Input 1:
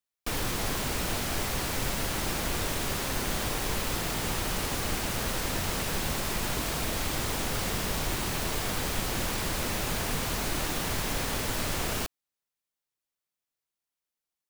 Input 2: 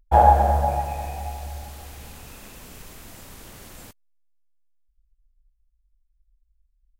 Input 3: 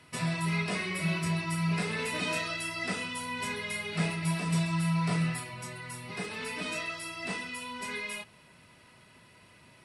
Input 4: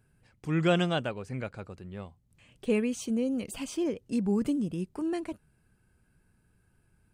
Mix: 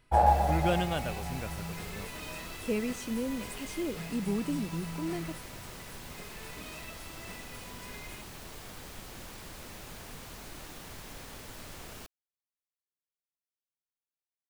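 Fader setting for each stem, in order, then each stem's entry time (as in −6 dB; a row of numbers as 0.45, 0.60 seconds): −15.0, −8.5, −12.0, −4.5 decibels; 0.00, 0.00, 0.00, 0.00 seconds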